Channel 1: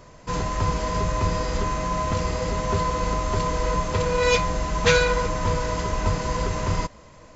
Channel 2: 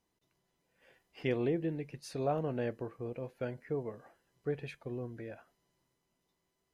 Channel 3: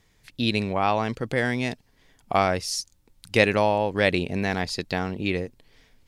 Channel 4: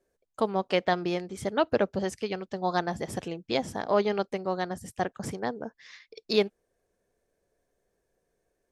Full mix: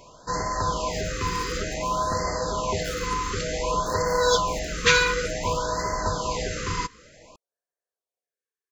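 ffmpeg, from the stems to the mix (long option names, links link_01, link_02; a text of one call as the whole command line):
ffmpeg -i stem1.wav -i stem2.wav -i stem3.wav -i stem4.wav -filter_complex "[0:a]volume=3dB[link_01];[1:a]volume=-5.5dB[link_02];[2:a]equalizer=frequency=1300:width_type=o:width=0.78:gain=11,acrusher=samples=23:mix=1:aa=0.000001:lfo=1:lforange=13.8:lforate=1.5,adelay=500,volume=-18.5dB[link_03];[3:a]highpass=580,volume=-13dB[link_04];[link_01][link_02][link_03][link_04]amix=inputs=4:normalize=0,lowshelf=frequency=350:gain=-11,afftfilt=real='re*(1-between(b*sr/1024,670*pow(3000/670,0.5+0.5*sin(2*PI*0.55*pts/sr))/1.41,670*pow(3000/670,0.5+0.5*sin(2*PI*0.55*pts/sr))*1.41))':imag='im*(1-between(b*sr/1024,670*pow(3000/670,0.5+0.5*sin(2*PI*0.55*pts/sr))/1.41,670*pow(3000/670,0.5+0.5*sin(2*PI*0.55*pts/sr))*1.41))':win_size=1024:overlap=0.75" out.wav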